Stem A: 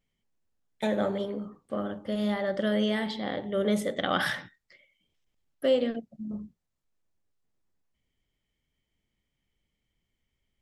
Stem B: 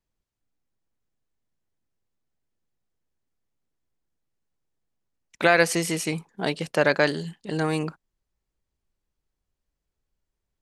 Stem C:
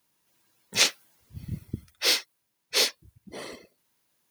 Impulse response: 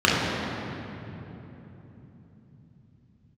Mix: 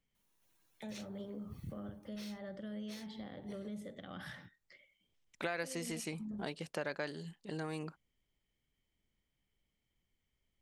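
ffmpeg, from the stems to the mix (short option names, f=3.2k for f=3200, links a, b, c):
-filter_complex "[0:a]volume=-4dB[a];[1:a]volume=-11dB[b];[2:a]bandreject=f=4.9k:w=11,adelay=150,volume=-8dB[c];[a][c]amix=inputs=2:normalize=0,acrossover=split=200[d][e];[e]acompressor=threshold=-48dB:ratio=2.5[f];[d][f]amix=inputs=2:normalize=0,alimiter=level_in=12dB:limit=-24dB:level=0:latency=1:release=326,volume=-12dB,volume=0dB[g];[b][g]amix=inputs=2:normalize=0,acompressor=threshold=-38dB:ratio=2.5"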